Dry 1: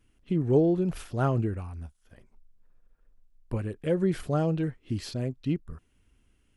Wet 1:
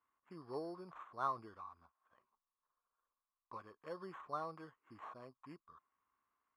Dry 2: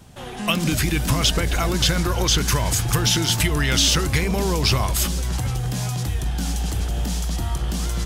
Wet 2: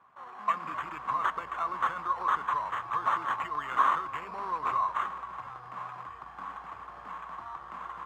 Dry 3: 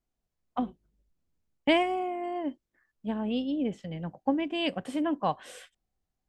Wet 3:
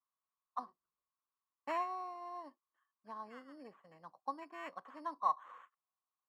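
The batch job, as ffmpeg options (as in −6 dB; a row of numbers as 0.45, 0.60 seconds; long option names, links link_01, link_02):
-af "acrusher=samples=9:mix=1:aa=0.000001,bandpass=frequency=1100:width_type=q:width=10:csg=0,volume=5.5dB"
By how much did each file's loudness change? −18.5, −11.0, −11.5 LU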